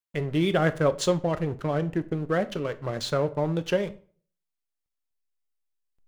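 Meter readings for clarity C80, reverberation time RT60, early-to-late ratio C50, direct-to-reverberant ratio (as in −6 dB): 23.0 dB, 0.45 s, 18.0 dB, 11.0 dB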